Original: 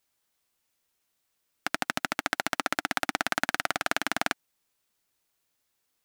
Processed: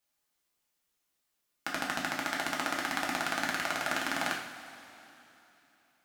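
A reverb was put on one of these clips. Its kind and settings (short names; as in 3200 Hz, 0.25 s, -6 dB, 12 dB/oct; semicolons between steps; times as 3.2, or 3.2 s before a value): two-slope reverb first 0.53 s, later 3.3 s, from -15 dB, DRR -3 dB; gain -7.5 dB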